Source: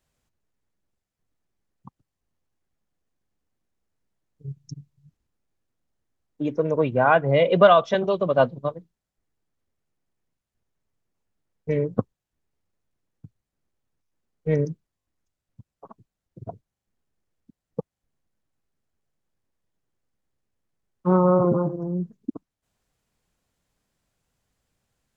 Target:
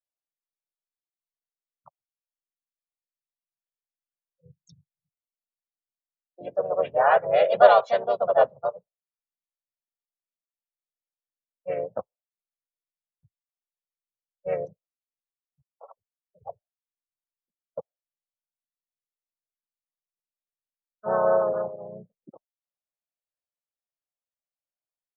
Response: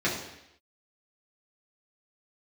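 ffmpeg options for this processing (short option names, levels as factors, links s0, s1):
-filter_complex "[0:a]asplit=4[s0][s1][s2][s3];[s1]asetrate=29433,aresample=44100,atempo=1.49831,volume=0.501[s4];[s2]asetrate=37084,aresample=44100,atempo=1.18921,volume=0.447[s5];[s3]asetrate=52444,aresample=44100,atempo=0.840896,volume=0.794[s6];[s0][s4][s5][s6]amix=inputs=4:normalize=0,lowshelf=f=420:t=q:w=3:g=-11,afftdn=nr=23:nf=-40,acrossover=split=140[s7][s8];[s7]acompressor=threshold=0.00355:ratio=6[s9];[s9][s8]amix=inputs=2:normalize=0,volume=0.398"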